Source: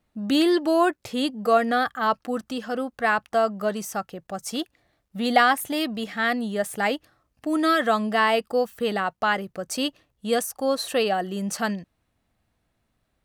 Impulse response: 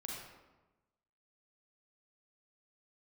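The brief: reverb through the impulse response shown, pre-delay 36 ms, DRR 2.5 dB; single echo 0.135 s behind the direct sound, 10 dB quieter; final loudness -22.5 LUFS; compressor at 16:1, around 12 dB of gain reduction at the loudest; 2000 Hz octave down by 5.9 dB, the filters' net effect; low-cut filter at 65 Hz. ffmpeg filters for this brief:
-filter_complex "[0:a]highpass=65,equalizer=f=2k:t=o:g=-8,acompressor=threshold=-26dB:ratio=16,aecho=1:1:135:0.316,asplit=2[a][b];[1:a]atrim=start_sample=2205,adelay=36[c];[b][c]afir=irnorm=-1:irlink=0,volume=-1.5dB[d];[a][d]amix=inputs=2:normalize=0,volume=7dB"

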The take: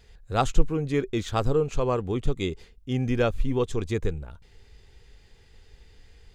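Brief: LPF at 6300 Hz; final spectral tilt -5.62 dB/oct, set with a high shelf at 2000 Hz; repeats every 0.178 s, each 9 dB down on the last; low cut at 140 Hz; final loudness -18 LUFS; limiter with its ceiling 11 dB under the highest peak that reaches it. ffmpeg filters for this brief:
-af "highpass=140,lowpass=6.3k,highshelf=f=2k:g=3,alimiter=limit=-18dB:level=0:latency=1,aecho=1:1:178|356|534|712:0.355|0.124|0.0435|0.0152,volume=12dB"

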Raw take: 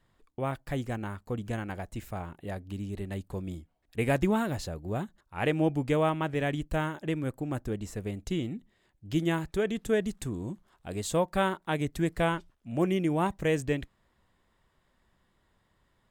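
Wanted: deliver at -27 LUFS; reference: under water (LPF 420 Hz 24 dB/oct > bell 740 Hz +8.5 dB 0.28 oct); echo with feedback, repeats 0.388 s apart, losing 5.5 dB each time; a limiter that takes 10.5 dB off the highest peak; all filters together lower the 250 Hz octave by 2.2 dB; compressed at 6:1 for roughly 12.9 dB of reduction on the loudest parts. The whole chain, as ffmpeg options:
-af "equalizer=f=250:t=o:g=-3,acompressor=threshold=-37dB:ratio=6,alimiter=level_in=10dB:limit=-24dB:level=0:latency=1,volume=-10dB,lowpass=f=420:w=0.5412,lowpass=f=420:w=1.3066,equalizer=f=740:t=o:w=0.28:g=8.5,aecho=1:1:388|776|1164|1552|1940|2328|2716:0.531|0.281|0.149|0.079|0.0419|0.0222|0.0118,volume=18.5dB"

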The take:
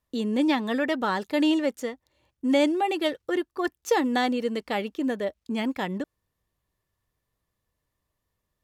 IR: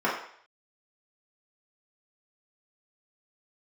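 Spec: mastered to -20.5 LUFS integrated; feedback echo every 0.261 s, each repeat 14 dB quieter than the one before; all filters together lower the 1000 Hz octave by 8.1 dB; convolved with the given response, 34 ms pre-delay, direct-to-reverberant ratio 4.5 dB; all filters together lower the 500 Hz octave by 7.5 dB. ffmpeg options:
-filter_complex "[0:a]equalizer=f=500:t=o:g=-7.5,equalizer=f=1k:t=o:g=-8,aecho=1:1:261|522:0.2|0.0399,asplit=2[a][b];[1:a]atrim=start_sample=2205,adelay=34[c];[b][c]afir=irnorm=-1:irlink=0,volume=-18.5dB[d];[a][d]amix=inputs=2:normalize=0,volume=8.5dB"

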